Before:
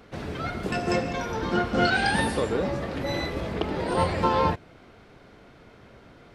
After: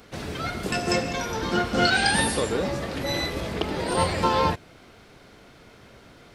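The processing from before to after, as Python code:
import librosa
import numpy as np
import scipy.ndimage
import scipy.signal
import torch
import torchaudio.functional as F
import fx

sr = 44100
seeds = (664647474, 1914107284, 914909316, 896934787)

y = fx.high_shelf(x, sr, hz=3700.0, db=12.0)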